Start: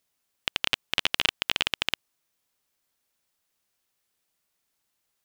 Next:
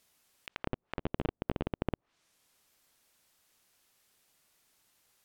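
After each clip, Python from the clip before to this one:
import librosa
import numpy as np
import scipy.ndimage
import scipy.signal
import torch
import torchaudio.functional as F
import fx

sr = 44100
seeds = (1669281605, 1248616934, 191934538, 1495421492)

y = fx.env_lowpass_down(x, sr, base_hz=390.0, full_db=-28.5)
y = fx.over_compress(y, sr, threshold_db=-39.0, ratio=-1.0)
y = y * 10.0 ** (4.5 / 20.0)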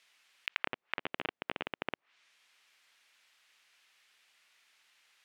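y = fx.bandpass_q(x, sr, hz=2300.0, q=1.3)
y = y * 10.0 ** (10.5 / 20.0)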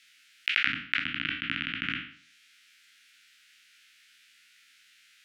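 y = fx.spec_trails(x, sr, decay_s=0.51)
y = scipy.signal.sosfilt(scipy.signal.cheby1(4, 1.0, [290.0, 1400.0], 'bandstop', fs=sr, output='sos'), y)
y = y * 10.0 ** (7.0 / 20.0)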